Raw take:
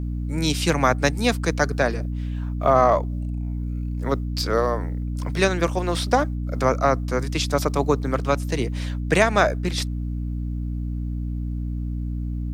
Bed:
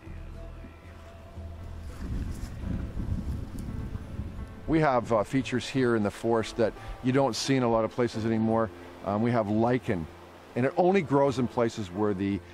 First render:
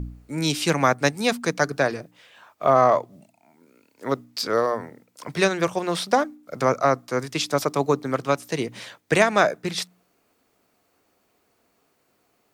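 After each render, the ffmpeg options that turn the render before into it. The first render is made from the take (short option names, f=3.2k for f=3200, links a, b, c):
-af "bandreject=f=60:t=h:w=4,bandreject=f=120:t=h:w=4,bandreject=f=180:t=h:w=4,bandreject=f=240:t=h:w=4,bandreject=f=300:t=h:w=4"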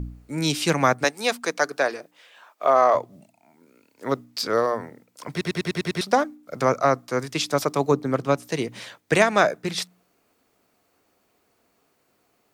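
-filter_complex "[0:a]asettb=1/sr,asplit=3[a][b][c];[a]atrim=end=1.044[d];[b]atrim=start=1.04:end=2.95,asetpts=PTS-STARTPTS,afade=t=in:d=0.004:c=qsin,afade=t=out:st=1.906:d=0.004:c=qsin,highpass=380[e];[c]atrim=start=2.946[f];[d][e]acrossfade=d=0.004:c1=hsin:c2=qsin[g];[g][f]acrossfade=d=0.004:c1=qsin:c2=hsin,asettb=1/sr,asplit=3[h][i][j];[h]atrim=end=7.914[k];[i]atrim=start=7.91:end=8.48,asetpts=PTS-STARTPTS,afade=t=in:d=0.004:c=qsin,afade=t=out:st=0.566:d=0.004:c=qsin,tiltshelf=f=750:g=3.5[l];[j]atrim=start=8.476[m];[k][l]acrossfade=d=0.004:c1=hsin:c2=qsin[n];[n][m]acrossfade=d=0.004:c1=qsin:c2=hsin,asplit=8[o][p][q][r][s][t][u][v];[o]atrim=end=5.412[w];[p]atrim=start=5.308:end=5.412[x];[q]atrim=start=5.308:end=5.412[y];[r]atrim=start=5.308:end=5.412[z];[s]atrim=start=5.308:end=5.412[aa];[t]atrim=start=5.308:end=5.412[ab];[u]atrim=start=5.308:end=5.412[ac];[v]atrim=start=6.008[ad];[w][x]acrossfade=d=0.004:c1=hsin:c2=hsin[ae];[ae][y]acrossfade=d=0.004:c1=hsin:c2=hsin[af];[af][z]acrossfade=d=0.004:c1=hsin:c2=hsin[ag];[ag][aa]acrossfade=d=0.004:c1=hsin:c2=hsin[ah];[ah][ab]acrossfade=d=0.004:c1=hsin:c2=hsin[ai];[ai][ac]acrossfade=d=0.004:c1=hsin:c2=hsin[aj];[aj][ad]acrossfade=d=0.004:c1=hsin:c2=hsin"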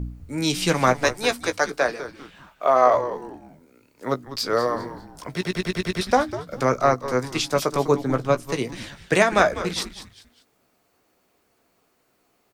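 -filter_complex "[0:a]asplit=2[a][b];[b]adelay=16,volume=-9.5dB[c];[a][c]amix=inputs=2:normalize=0,asplit=4[d][e][f][g];[e]adelay=199,afreqshift=-140,volume=-12.5dB[h];[f]adelay=398,afreqshift=-280,volume=-21.9dB[i];[g]adelay=597,afreqshift=-420,volume=-31.2dB[j];[d][h][i][j]amix=inputs=4:normalize=0"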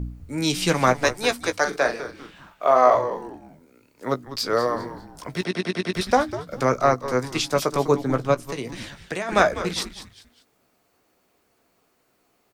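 -filter_complex "[0:a]asettb=1/sr,asplit=3[a][b][c];[a]atrim=end=1.604[d];[b]atrim=start=1.6:end=3.28,asetpts=PTS-STARTPTS,afade=t=in:d=0.004:c=qsin,afade=t=out:st=1.676:d=0.004:c=qsin,asplit=2[e][f];[f]adelay=43,volume=-8dB[g];[e][g]amix=inputs=2:normalize=0,atrim=end_sample=74088[h];[c]atrim=start=3.276[i];[d][h]acrossfade=d=0.004:c1=hsin:c2=qsin[j];[j][i]acrossfade=d=0.004:c1=qsin:c2=hsin,asettb=1/sr,asplit=3[k][l][m];[k]atrim=end=5.444[n];[l]atrim=start=5.44:end=5.94,asetpts=PTS-STARTPTS,afade=t=in:d=0.004:c=qsin,afade=t=out:st=0.496:d=0.004:c=qsin,highpass=f=120:w=0.5412,highpass=f=120:w=1.3066,equalizer=f=140:t=q:w=4:g=-9,equalizer=f=270:t=q:w=4:g=7,equalizer=f=710:t=q:w=4:g=4,equalizer=f=7.2k:t=q:w=4:g=-9,lowpass=f=9.4k:w=0.5412,lowpass=f=9.4k:w=1.3066[o];[m]atrim=start=5.936[p];[n][o]acrossfade=d=0.004:c1=hsin:c2=qsin[q];[q][p]acrossfade=d=0.004:c1=qsin:c2=hsin,asettb=1/sr,asplit=3[r][s][t];[r]atrim=end=8.344[u];[s]atrim=start=8.34:end=9.29,asetpts=PTS-STARTPTS,afade=t=in:d=0.004:c=qsin,afade=t=out:st=0.946:d=0.004:c=qsin,acompressor=threshold=-25dB:ratio=6:attack=3.2:release=140:knee=1:detection=peak[v];[t]atrim=start=9.286[w];[u][v]acrossfade=d=0.004:c1=hsin:c2=qsin[x];[x][w]acrossfade=d=0.004:c1=qsin:c2=hsin"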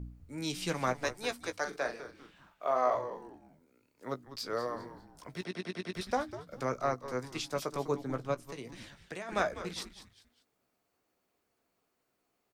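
-af "volume=-13dB"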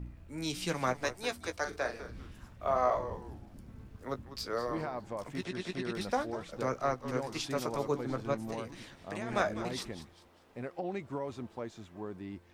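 -filter_complex "[1:a]volume=-14.5dB[a];[0:a][a]amix=inputs=2:normalize=0"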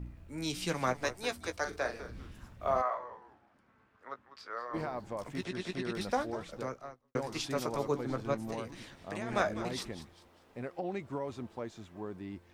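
-filter_complex "[0:a]asplit=3[a][b][c];[a]afade=t=out:st=2.81:d=0.02[d];[b]bandpass=f=1.4k:t=q:w=1.3,afade=t=in:st=2.81:d=0.02,afade=t=out:st=4.73:d=0.02[e];[c]afade=t=in:st=4.73:d=0.02[f];[d][e][f]amix=inputs=3:normalize=0,asplit=2[g][h];[g]atrim=end=7.15,asetpts=PTS-STARTPTS,afade=t=out:st=6.49:d=0.66:c=qua[i];[h]atrim=start=7.15,asetpts=PTS-STARTPTS,afade=t=in:d=0.004:c=hsin[j];[i][j]concat=n=2:v=0:a=1"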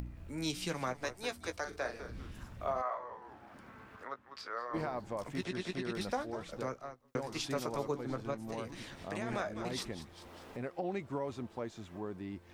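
-af "alimiter=level_in=0.5dB:limit=-24dB:level=0:latency=1:release=385,volume=-0.5dB,acompressor=mode=upward:threshold=-40dB:ratio=2.5"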